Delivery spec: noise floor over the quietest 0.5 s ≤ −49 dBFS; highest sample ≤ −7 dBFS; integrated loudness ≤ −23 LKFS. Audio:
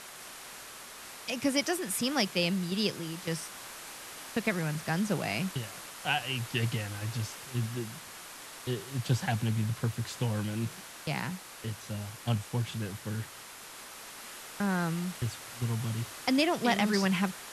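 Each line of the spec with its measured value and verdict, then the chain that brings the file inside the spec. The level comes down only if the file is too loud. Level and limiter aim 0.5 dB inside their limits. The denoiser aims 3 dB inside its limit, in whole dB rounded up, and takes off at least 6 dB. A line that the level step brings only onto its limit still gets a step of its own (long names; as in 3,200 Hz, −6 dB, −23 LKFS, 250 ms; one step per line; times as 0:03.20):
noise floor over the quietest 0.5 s −47 dBFS: out of spec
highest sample −13.0 dBFS: in spec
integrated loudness −32.5 LKFS: in spec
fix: broadband denoise 6 dB, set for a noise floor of −47 dBFS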